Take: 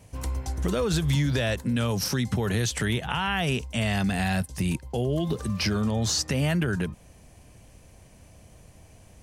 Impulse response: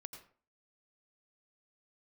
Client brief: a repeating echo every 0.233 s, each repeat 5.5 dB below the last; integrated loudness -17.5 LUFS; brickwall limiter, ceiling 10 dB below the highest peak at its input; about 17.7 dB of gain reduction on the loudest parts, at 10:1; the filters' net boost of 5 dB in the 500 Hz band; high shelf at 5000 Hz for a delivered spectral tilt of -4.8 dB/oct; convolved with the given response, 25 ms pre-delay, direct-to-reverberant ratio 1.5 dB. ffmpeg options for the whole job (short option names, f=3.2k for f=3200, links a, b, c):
-filter_complex "[0:a]equalizer=f=500:t=o:g=6,highshelf=f=5k:g=5,acompressor=threshold=-38dB:ratio=10,alimiter=level_in=10dB:limit=-24dB:level=0:latency=1,volume=-10dB,aecho=1:1:233|466|699|932|1165|1398|1631:0.531|0.281|0.149|0.079|0.0419|0.0222|0.0118,asplit=2[a][b];[1:a]atrim=start_sample=2205,adelay=25[c];[b][c]afir=irnorm=-1:irlink=0,volume=3.5dB[d];[a][d]amix=inputs=2:normalize=0,volume=23dB"